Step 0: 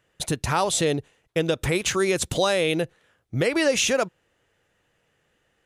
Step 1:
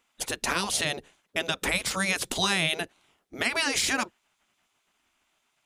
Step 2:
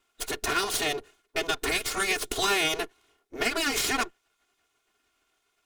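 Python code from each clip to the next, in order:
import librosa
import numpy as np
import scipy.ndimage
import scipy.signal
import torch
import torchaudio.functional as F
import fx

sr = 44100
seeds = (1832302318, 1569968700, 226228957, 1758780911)

y1 = fx.hum_notches(x, sr, base_hz=50, count=2)
y1 = fx.spec_gate(y1, sr, threshold_db=-10, keep='weak')
y1 = F.gain(torch.from_numpy(y1), 2.5).numpy()
y2 = fx.lower_of_two(y1, sr, delay_ms=2.8)
y2 = fx.small_body(y2, sr, hz=(430.0, 1400.0), ring_ms=45, db=9)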